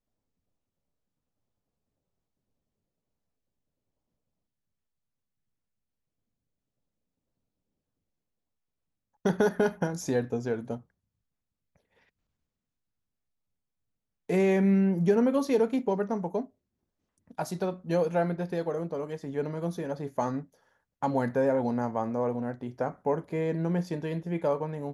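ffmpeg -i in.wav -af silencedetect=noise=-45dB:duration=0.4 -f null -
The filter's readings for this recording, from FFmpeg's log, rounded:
silence_start: 0.00
silence_end: 9.25 | silence_duration: 9.25
silence_start: 10.81
silence_end: 14.29 | silence_duration: 3.49
silence_start: 16.45
silence_end: 17.31 | silence_duration: 0.85
silence_start: 20.44
silence_end: 21.03 | silence_duration: 0.58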